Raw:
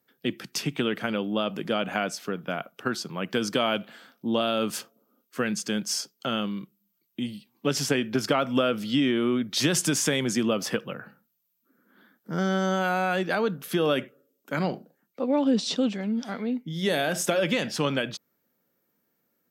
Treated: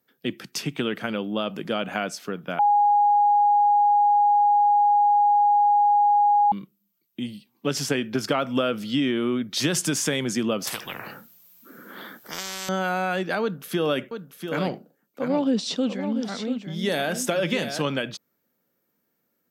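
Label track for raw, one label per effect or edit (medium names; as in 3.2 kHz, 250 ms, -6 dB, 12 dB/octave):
2.590000	6.520000	bleep 824 Hz -15 dBFS
10.670000	12.690000	spectrum-flattening compressor 10:1
13.420000	17.820000	delay 691 ms -8 dB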